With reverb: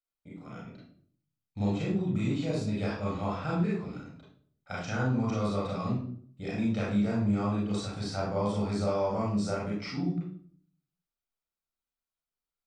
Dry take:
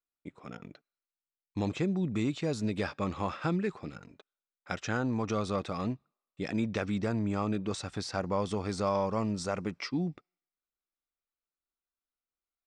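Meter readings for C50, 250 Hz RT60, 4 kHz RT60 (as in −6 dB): 0.5 dB, 0.70 s, 0.40 s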